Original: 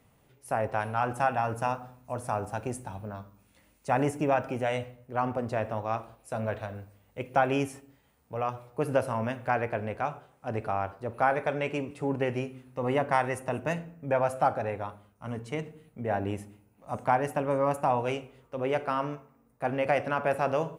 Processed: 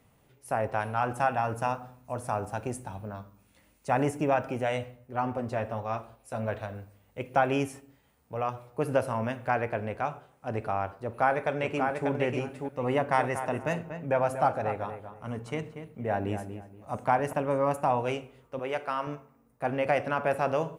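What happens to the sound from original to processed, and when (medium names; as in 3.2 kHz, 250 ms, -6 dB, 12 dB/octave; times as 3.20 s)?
4.98–6.48 s: comb of notches 160 Hz
11.00–12.09 s: echo throw 590 ms, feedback 15%, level -4.5 dB
12.94–17.33 s: filtered feedback delay 238 ms, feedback 27%, low-pass 2.2 kHz, level -9 dB
18.59–19.07 s: bass shelf 410 Hz -10 dB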